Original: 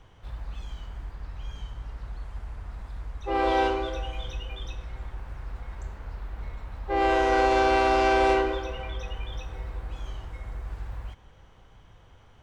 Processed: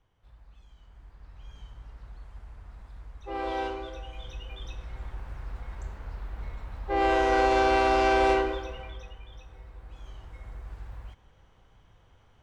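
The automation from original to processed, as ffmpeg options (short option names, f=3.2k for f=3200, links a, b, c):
-af "volume=5dB,afade=t=in:st=0.74:d=0.94:silence=0.354813,afade=t=in:st=4.06:d=1.05:silence=0.446684,afade=t=out:st=8.31:d=0.87:silence=0.298538,afade=t=in:st=9.74:d=0.72:silence=0.501187"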